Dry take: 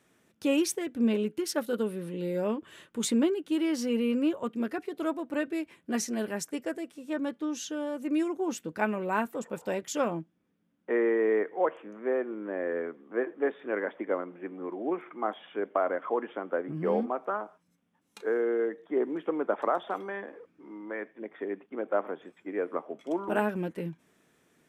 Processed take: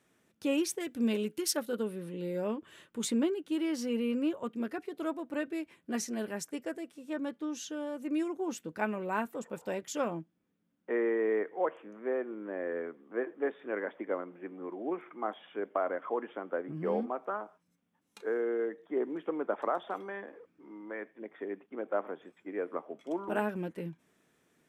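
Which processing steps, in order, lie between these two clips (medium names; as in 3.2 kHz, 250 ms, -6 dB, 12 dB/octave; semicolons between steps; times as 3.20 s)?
0.80–1.57 s: treble shelf 3.2 kHz +10 dB; trim -4 dB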